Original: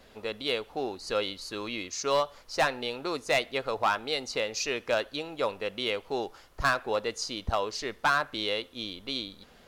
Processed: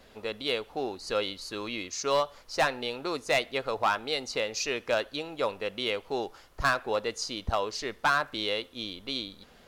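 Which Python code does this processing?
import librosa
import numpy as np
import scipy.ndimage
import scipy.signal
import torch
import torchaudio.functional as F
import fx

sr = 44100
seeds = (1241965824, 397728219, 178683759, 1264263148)

y = fx.dmg_crackle(x, sr, seeds[0], per_s=120.0, level_db=-51.0, at=(8.11, 8.65), fade=0.02)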